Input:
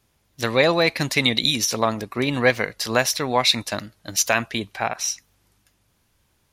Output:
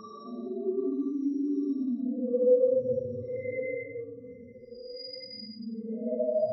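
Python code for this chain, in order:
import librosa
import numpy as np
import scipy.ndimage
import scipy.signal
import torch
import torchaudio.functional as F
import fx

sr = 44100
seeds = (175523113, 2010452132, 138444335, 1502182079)

y = fx.spec_topn(x, sr, count=1)
y = fx.echo_alternate(y, sr, ms=108, hz=1400.0, feedback_pct=55, wet_db=-12)
y = fx.paulstretch(y, sr, seeds[0], factor=7.3, window_s=0.1, from_s=2.11)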